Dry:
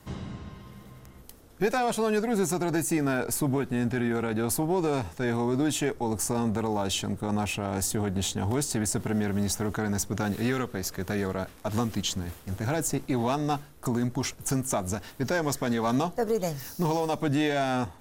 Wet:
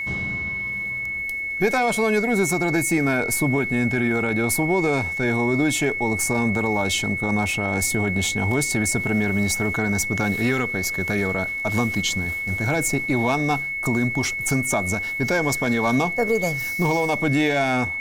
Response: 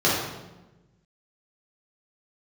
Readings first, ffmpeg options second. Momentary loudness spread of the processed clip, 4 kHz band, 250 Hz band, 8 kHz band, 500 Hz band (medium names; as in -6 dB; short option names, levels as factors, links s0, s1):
4 LU, +5.0 dB, +5.0 dB, +5.0 dB, +5.0 dB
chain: -af "aeval=exprs='val(0)+0.0316*sin(2*PI*2200*n/s)':c=same,acontrast=23"